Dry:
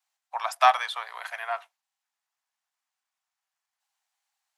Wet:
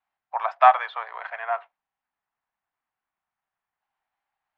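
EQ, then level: LPF 2200 Hz 12 dB/oct; air absorption 170 m; low shelf 410 Hz +8.5 dB; +3.5 dB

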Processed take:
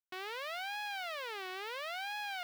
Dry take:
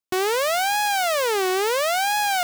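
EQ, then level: air absorption 390 m; differentiator; low shelf 180 Hz +6.5 dB; 0.0 dB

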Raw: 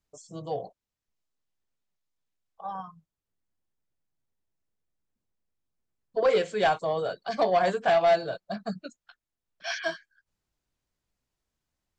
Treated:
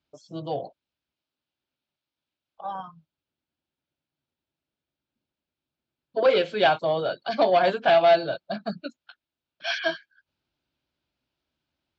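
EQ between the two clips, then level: speaker cabinet 110–4200 Hz, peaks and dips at 110 Hz -8 dB, 190 Hz -9 dB, 450 Hz -9 dB, 740 Hz -5 dB, 1100 Hz -8 dB, 1900 Hz -9 dB; +8.5 dB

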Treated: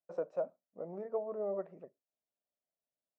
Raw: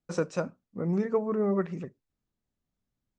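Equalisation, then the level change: band-pass 630 Hz, Q 5.3; +2.0 dB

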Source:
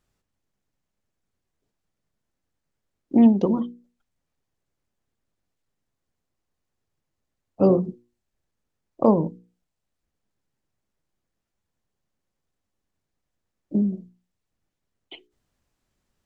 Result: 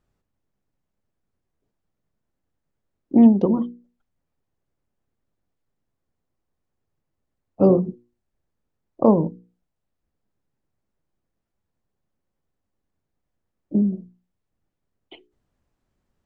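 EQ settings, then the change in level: high shelf 2000 Hz -10.5 dB; +2.5 dB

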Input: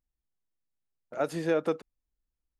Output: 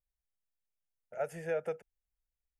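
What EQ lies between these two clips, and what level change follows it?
fixed phaser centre 1100 Hz, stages 6; -4.5 dB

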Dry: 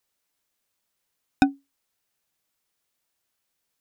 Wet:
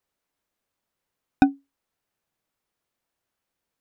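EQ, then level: high shelf 2300 Hz -11 dB; +2.5 dB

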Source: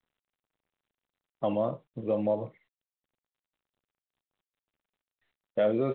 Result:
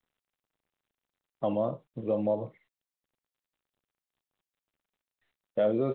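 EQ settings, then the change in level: dynamic EQ 2100 Hz, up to -6 dB, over -48 dBFS, Q 1.1; 0.0 dB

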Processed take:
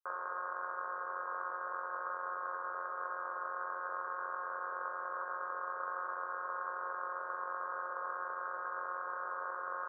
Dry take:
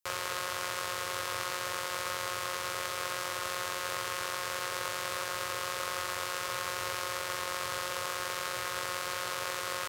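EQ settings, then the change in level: HPF 780 Hz 12 dB/oct; rippled Chebyshev low-pass 1600 Hz, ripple 3 dB; air absorption 220 m; +2.5 dB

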